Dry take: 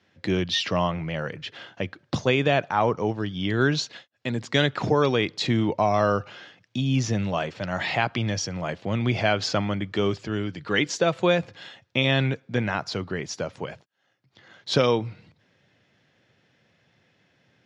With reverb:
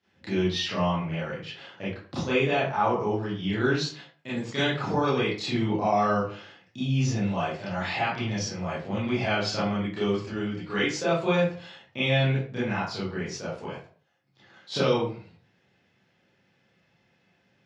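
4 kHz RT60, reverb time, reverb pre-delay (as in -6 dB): 0.30 s, 0.45 s, 25 ms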